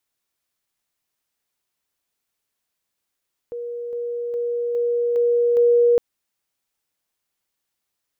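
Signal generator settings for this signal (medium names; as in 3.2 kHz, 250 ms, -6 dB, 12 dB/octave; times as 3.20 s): level ladder 477 Hz -27 dBFS, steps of 3 dB, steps 6, 0.41 s 0.00 s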